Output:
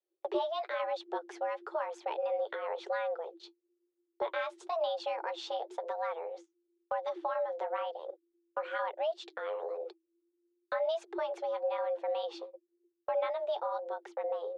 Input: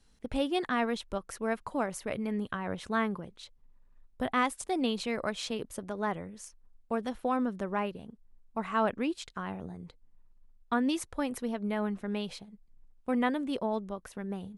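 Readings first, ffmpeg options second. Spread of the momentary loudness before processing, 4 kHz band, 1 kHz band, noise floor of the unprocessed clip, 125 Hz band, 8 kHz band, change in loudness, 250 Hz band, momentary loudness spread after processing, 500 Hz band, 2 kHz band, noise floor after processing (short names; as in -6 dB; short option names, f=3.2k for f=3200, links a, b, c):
13 LU, -5.0 dB, -1.5 dB, -63 dBFS, under -30 dB, under -15 dB, -3.0 dB, -18.5 dB, 8 LU, +2.0 dB, -5.5 dB, -82 dBFS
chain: -af "lowpass=f=6.1k:w=0.5412,lowpass=f=6.1k:w=1.3066,agate=range=-30dB:threshold=-48dB:ratio=16:detection=peak,equalizer=f=3.1k:t=o:w=0.56:g=7,afreqshift=330,acompressor=threshold=-39dB:ratio=2,tiltshelf=f=820:g=8,flanger=delay=1.1:depth=8.5:regen=-42:speed=1:shape=sinusoidal,volume=6.5dB"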